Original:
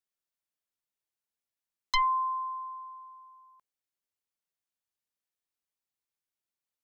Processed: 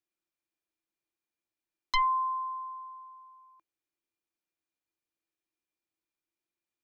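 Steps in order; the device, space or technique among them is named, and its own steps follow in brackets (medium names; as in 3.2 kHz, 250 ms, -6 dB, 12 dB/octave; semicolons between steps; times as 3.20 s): inside a helmet (treble shelf 5.4 kHz -7.5 dB; small resonant body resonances 330/2400 Hz, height 16 dB, ringing for 85 ms)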